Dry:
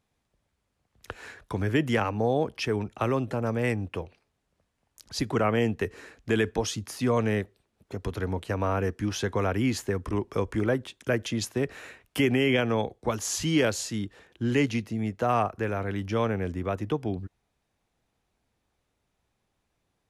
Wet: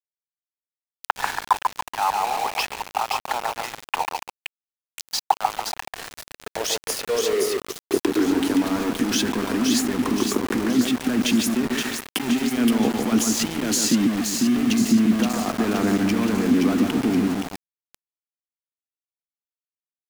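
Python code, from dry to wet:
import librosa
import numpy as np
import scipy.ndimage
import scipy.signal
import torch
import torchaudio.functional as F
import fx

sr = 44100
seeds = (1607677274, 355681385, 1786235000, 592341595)

y = fx.peak_eq(x, sr, hz=540.0, db=-8.0, octaves=0.35)
y = fx.over_compress(y, sr, threshold_db=-35.0, ratio=-1.0)
y = fx.echo_split(y, sr, split_hz=2200.0, low_ms=142, high_ms=522, feedback_pct=52, wet_db=-4)
y = fx.filter_sweep_highpass(y, sr, from_hz=840.0, to_hz=240.0, start_s=5.67, end_s=8.83, q=5.9)
y = np.where(np.abs(y) >= 10.0 ** (-32.5 / 20.0), y, 0.0)
y = F.gain(torch.from_numpy(y), 7.0).numpy()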